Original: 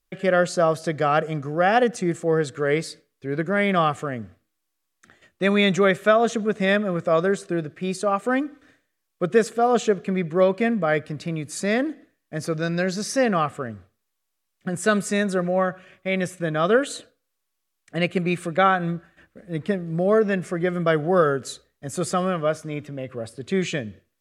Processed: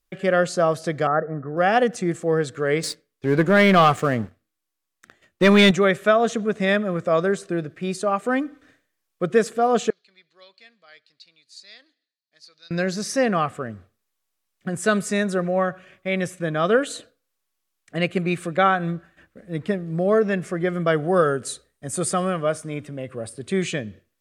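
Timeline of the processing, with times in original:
0:01.07–0:01.57: Chebyshev low-pass with heavy ripple 1,900 Hz, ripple 3 dB
0:02.83–0:05.71: leveller curve on the samples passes 2
0:09.90–0:12.71: resonant band-pass 4,300 Hz, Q 6.9
0:21.02–0:23.72: parametric band 8,900 Hz +13 dB 0.22 octaves

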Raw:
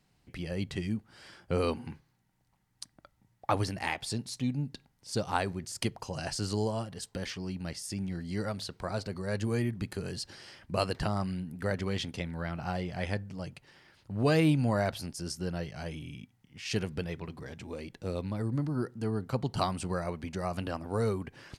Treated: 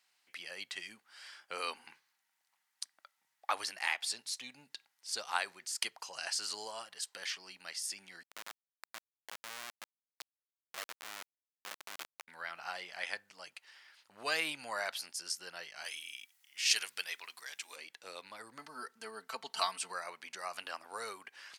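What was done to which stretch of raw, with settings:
0:08.23–0:12.28: comparator with hysteresis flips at −28 dBFS
0:15.84–0:17.76: spectral tilt +3.5 dB per octave
0:18.58–0:19.92: comb filter 4.5 ms, depth 62%
whole clip: high-pass filter 1,300 Hz 12 dB per octave; level +2 dB

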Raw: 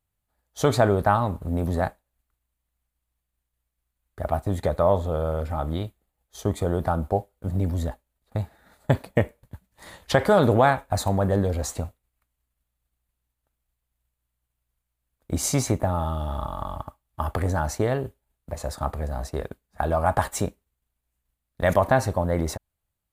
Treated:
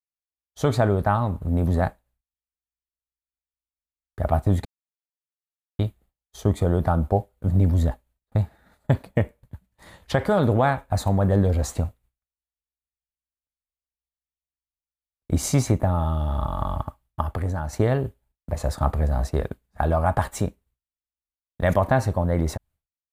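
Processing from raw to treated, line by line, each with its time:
0:04.65–0:05.79: silence
0:17.21–0:17.73: clip gain −7 dB
whole clip: downward expander −54 dBFS; bass and treble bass +5 dB, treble −3 dB; automatic gain control gain up to 9 dB; level −5 dB

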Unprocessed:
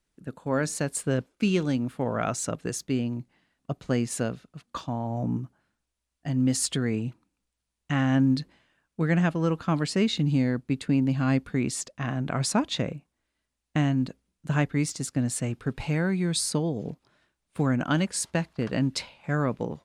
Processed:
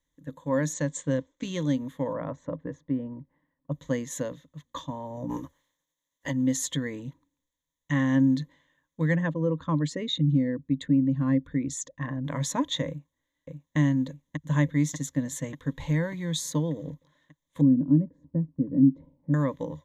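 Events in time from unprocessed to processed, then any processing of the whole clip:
0:00.73–0:01.45: Butterworth low-pass 8,400 Hz 96 dB per octave
0:02.13–0:03.72: low-pass filter 1,200 Hz
0:05.29–0:06.30: ceiling on every frequency bin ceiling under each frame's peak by 22 dB
0:09.15–0:12.25: spectral envelope exaggerated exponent 1.5
0:12.88–0:13.77: delay throw 590 ms, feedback 60%, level −3.5 dB
0:16.03–0:16.91: slack as between gear wheels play −51 dBFS
0:17.61–0:19.34: low-pass with resonance 270 Hz, resonance Q 2.4
whole clip: EQ curve with evenly spaced ripples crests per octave 1.1, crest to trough 16 dB; level −5.5 dB

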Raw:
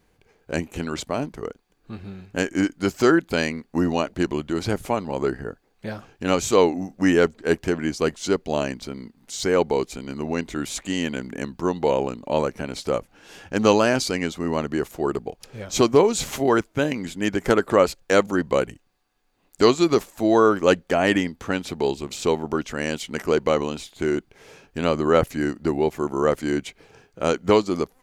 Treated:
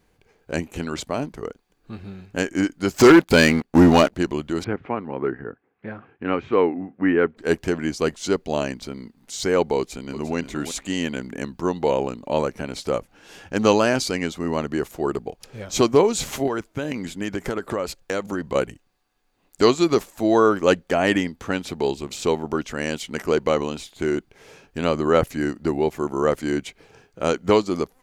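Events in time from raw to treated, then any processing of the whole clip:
0:02.96–0:04.13: leveller curve on the samples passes 3
0:04.64–0:07.37: loudspeaker in its box 120–2,300 Hz, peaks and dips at 180 Hz −4 dB, 600 Hz −7 dB, 870 Hz −3 dB
0:09.78–0:10.36: delay throw 350 ms, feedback 15%, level −10 dB
0:16.47–0:18.55: downward compressor, threshold −21 dBFS

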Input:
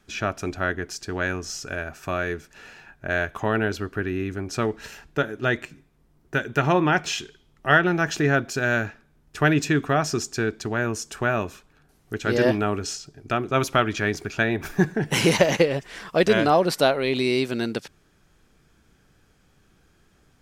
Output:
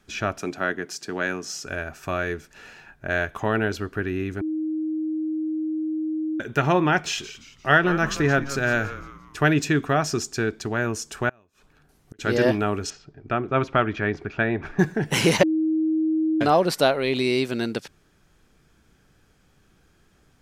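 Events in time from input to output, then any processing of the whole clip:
0:00.39–0:01.66: high-pass filter 140 Hz 24 dB per octave
0:04.41–0:06.40: beep over 313 Hz −23.5 dBFS
0:07.00–0:09.39: echo with shifted repeats 173 ms, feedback 41%, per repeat −140 Hz, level −13 dB
0:11.29–0:12.19: gate with flip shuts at −28 dBFS, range −32 dB
0:12.90–0:14.79: low-pass filter 2,300 Hz
0:15.43–0:16.41: beep over 316 Hz −19 dBFS

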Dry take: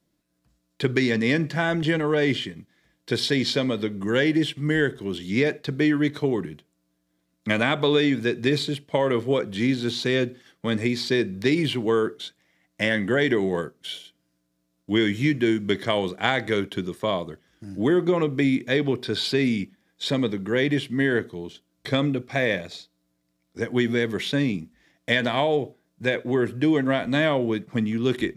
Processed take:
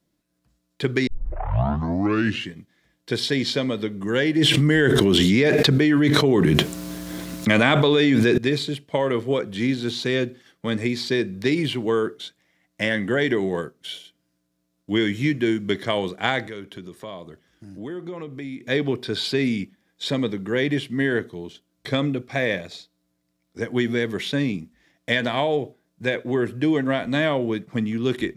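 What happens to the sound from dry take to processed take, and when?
0:01.07: tape start 1.47 s
0:04.38–0:08.38: envelope flattener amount 100%
0:16.47–0:18.67: downward compressor 2 to 1, threshold −40 dBFS

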